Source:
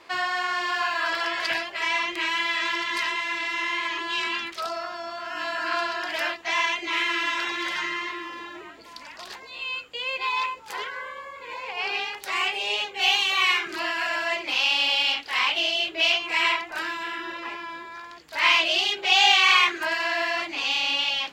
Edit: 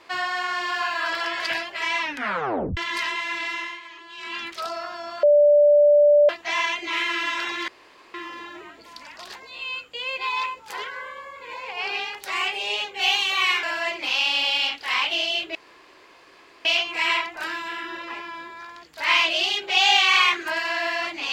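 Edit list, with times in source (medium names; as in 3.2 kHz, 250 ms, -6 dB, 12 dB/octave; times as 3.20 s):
2.01 s: tape stop 0.76 s
3.50–4.47 s: dip -13.5 dB, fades 0.30 s
5.23–6.29 s: bleep 587 Hz -11.5 dBFS
7.68–8.14 s: room tone
13.63–14.08 s: delete
16.00 s: insert room tone 1.10 s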